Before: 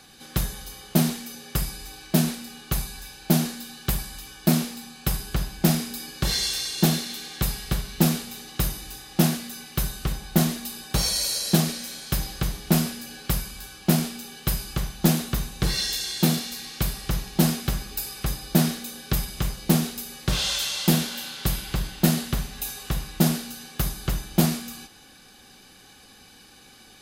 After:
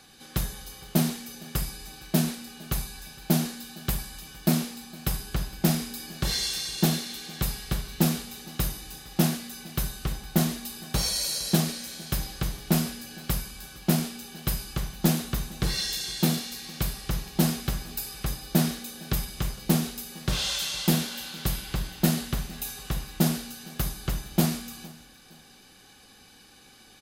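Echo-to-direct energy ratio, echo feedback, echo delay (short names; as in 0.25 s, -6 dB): -21.5 dB, 33%, 0.461 s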